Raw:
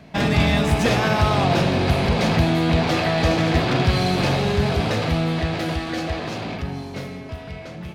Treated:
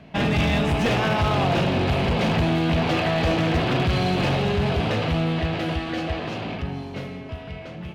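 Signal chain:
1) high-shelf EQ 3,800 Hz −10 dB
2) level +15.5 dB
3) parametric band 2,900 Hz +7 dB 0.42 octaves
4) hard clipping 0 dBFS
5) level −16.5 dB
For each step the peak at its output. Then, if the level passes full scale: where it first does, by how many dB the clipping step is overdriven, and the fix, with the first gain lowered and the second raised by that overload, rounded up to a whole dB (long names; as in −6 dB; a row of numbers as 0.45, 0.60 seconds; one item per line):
−6.0, +9.5, +9.5, 0.0, −16.5 dBFS
step 2, 9.5 dB
step 2 +5.5 dB, step 5 −6.5 dB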